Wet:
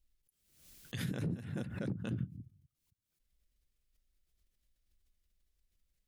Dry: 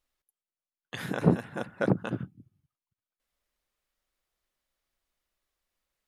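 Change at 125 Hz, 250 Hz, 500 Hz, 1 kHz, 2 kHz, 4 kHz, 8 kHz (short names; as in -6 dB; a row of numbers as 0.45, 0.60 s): -6.5 dB, -10.0 dB, -15.5 dB, -18.5 dB, -11.5 dB, -4.5 dB, n/a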